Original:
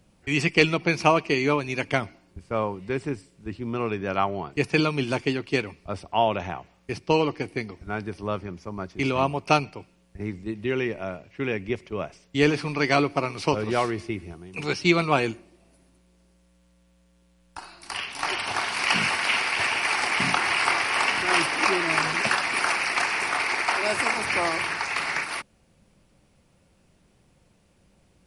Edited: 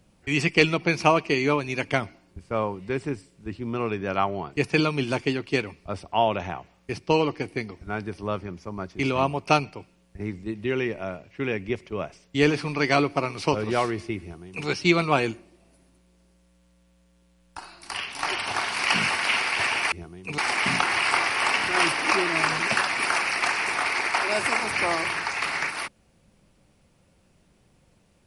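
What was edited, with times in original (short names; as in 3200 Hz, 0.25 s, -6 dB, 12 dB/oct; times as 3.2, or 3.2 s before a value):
14.21–14.67 copy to 19.92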